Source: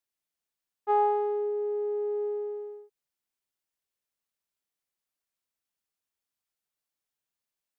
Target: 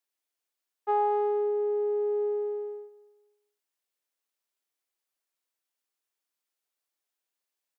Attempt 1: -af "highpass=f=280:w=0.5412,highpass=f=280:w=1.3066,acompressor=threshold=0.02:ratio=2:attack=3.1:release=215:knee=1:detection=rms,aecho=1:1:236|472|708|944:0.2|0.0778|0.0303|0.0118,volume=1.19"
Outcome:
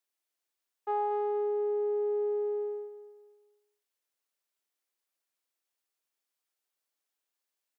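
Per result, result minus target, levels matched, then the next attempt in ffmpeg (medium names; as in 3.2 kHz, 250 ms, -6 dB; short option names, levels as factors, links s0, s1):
echo-to-direct +8 dB; compression: peak gain reduction +5 dB
-af "highpass=f=280:w=0.5412,highpass=f=280:w=1.3066,acompressor=threshold=0.02:ratio=2:attack=3.1:release=215:knee=1:detection=rms,aecho=1:1:236|472|708:0.0794|0.031|0.0121,volume=1.19"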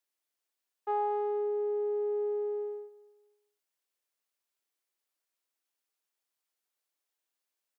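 compression: peak gain reduction +5 dB
-af "highpass=f=280:w=0.5412,highpass=f=280:w=1.3066,acompressor=threshold=0.0631:ratio=2:attack=3.1:release=215:knee=1:detection=rms,aecho=1:1:236|472|708:0.0794|0.031|0.0121,volume=1.19"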